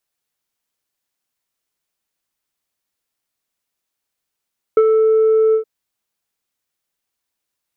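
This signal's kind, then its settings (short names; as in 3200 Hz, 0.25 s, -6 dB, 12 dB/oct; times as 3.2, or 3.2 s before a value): synth note square A4 24 dB/oct, low-pass 910 Hz, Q 0.76, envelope 0.5 oct, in 0.29 s, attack 3.2 ms, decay 0.05 s, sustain -4.5 dB, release 0.10 s, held 0.77 s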